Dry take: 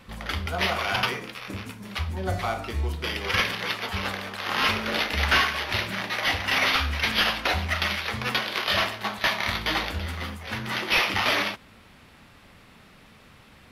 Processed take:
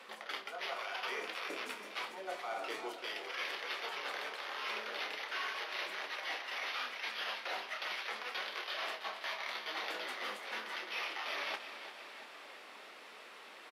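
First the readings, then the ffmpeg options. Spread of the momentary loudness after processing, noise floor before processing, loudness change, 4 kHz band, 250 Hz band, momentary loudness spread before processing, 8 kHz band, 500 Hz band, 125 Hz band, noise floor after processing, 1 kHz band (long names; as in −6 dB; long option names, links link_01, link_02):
11 LU, −53 dBFS, −14.5 dB, −14.0 dB, −20.5 dB, 11 LU, −14.5 dB, −12.0 dB, below −40 dB, −53 dBFS, −13.0 dB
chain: -filter_complex "[0:a]highpass=frequency=380:width=0.5412,highpass=frequency=380:width=1.3066,highshelf=frequency=11000:gain=-10,areverse,acompressor=threshold=-39dB:ratio=10,areverse,flanger=delay=4.2:depth=5.7:regen=-63:speed=0.82:shape=triangular,asplit=2[link_01][link_02];[link_02]adelay=28,volume=-11dB[link_03];[link_01][link_03]amix=inputs=2:normalize=0,asplit=2[link_04][link_05];[link_05]aecho=0:1:342|684|1026|1368|1710|2052|2394:0.282|0.163|0.0948|0.055|0.0319|0.0185|0.0107[link_06];[link_04][link_06]amix=inputs=2:normalize=0,volume=5dB"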